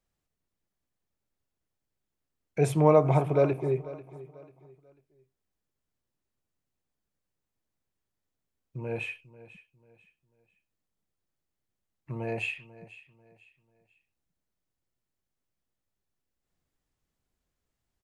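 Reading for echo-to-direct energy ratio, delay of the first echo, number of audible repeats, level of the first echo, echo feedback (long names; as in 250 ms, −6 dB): −17.5 dB, 492 ms, 2, −18.0 dB, 33%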